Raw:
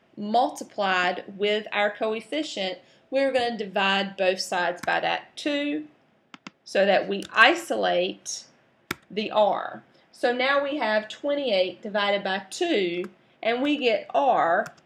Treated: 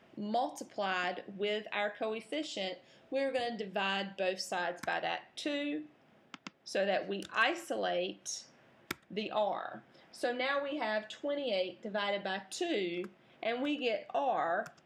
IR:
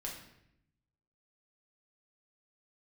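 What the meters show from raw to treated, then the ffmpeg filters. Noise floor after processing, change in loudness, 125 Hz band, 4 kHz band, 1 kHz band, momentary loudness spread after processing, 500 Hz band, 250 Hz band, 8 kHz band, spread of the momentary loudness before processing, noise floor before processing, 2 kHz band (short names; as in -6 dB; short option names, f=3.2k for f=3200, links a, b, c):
-65 dBFS, -11.0 dB, -9.5 dB, -10.5 dB, -11.0 dB, 9 LU, -10.5 dB, -9.5 dB, -7.5 dB, 9 LU, -63 dBFS, -11.5 dB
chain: -af "acompressor=threshold=-50dB:ratio=1.5"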